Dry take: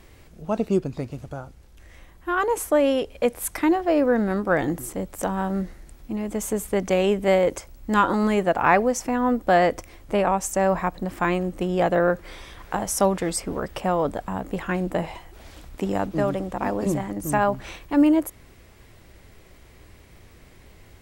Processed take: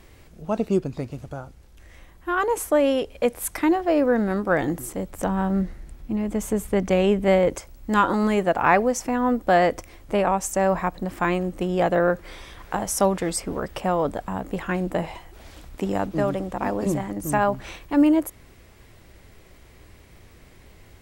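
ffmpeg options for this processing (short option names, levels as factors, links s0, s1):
-filter_complex "[0:a]asettb=1/sr,asplit=3[s0][s1][s2];[s0]atrim=end=5.104[s3];[s1]atrim=start=5.1:end=7.55,asetpts=PTS-STARTPTS,afade=t=in:d=0.004:c=qsin,afade=t=out:st=2.446:d=0.004:c=qsin,bass=f=250:g=5,treble=f=4000:g=-4[s4];[s2]atrim=start=7.546[s5];[s3][s4]acrossfade=d=0.004:c1=hsin:c2=qsin[s6];[s6][s5]acrossfade=d=0.004:c1=qsin:c2=hsin"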